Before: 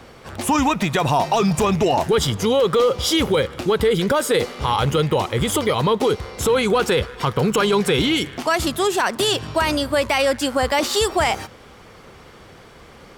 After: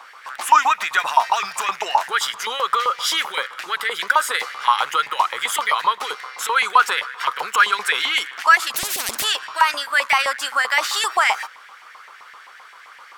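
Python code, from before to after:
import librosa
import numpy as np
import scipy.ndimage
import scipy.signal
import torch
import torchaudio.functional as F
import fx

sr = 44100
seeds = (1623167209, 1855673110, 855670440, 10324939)

y = fx.filter_lfo_highpass(x, sr, shape='saw_up', hz=7.7, low_hz=930.0, high_hz=2000.0, q=4.1)
y = fx.spectral_comp(y, sr, ratio=10.0, at=(8.74, 9.24))
y = y * 10.0 ** (-1.0 / 20.0)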